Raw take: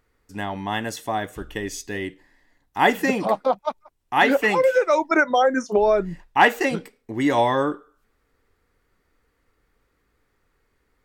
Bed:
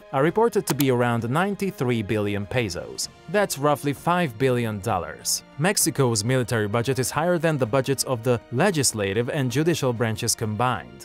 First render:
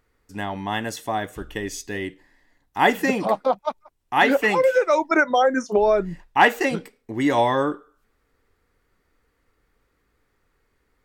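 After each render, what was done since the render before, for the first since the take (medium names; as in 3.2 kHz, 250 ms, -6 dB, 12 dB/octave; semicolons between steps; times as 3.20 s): no audible change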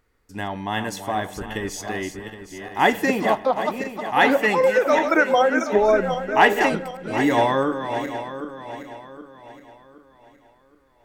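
backward echo that repeats 384 ms, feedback 61%, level -8 dB; spring tank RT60 1 s, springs 37 ms, DRR 18 dB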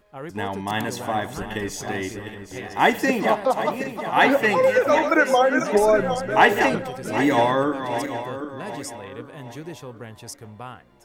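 add bed -15 dB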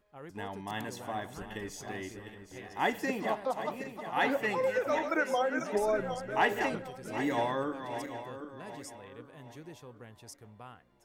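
trim -12 dB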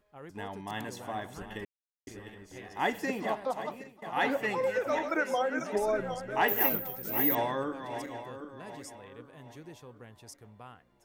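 1.65–2.07 s: mute; 3.58–4.02 s: fade out, to -18.5 dB; 6.48–7.35 s: careless resampling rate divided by 3×, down none, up zero stuff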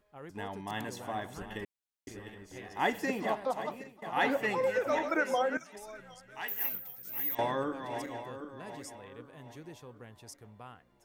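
5.57–7.39 s: amplifier tone stack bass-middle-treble 5-5-5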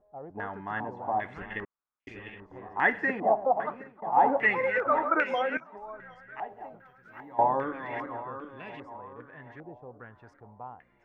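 step-sequenced low-pass 2.5 Hz 730–2500 Hz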